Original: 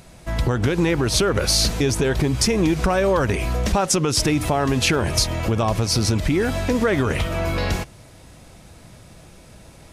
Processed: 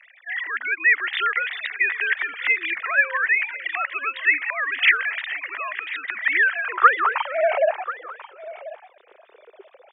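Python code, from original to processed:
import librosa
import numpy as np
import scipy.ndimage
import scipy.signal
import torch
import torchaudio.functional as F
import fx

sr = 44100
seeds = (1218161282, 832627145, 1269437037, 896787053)

p1 = fx.sine_speech(x, sr)
p2 = fx.filter_sweep_highpass(p1, sr, from_hz=1900.0, to_hz=390.0, start_s=6.35, end_s=8.26, q=6.2)
y = p2 + fx.echo_single(p2, sr, ms=1039, db=-16.5, dry=0)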